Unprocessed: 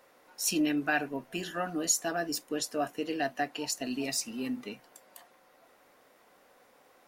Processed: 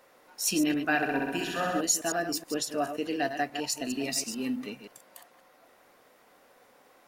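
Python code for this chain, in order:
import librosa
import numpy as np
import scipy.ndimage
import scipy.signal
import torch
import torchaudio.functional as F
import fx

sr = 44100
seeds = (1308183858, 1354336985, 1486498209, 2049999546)

y = fx.reverse_delay(x, sr, ms=106, wet_db=-8.5)
y = fx.room_flutter(y, sr, wall_m=11.1, rt60_s=1.4, at=(0.96, 1.81))
y = y * 10.0 ** (1.5 / 20.0)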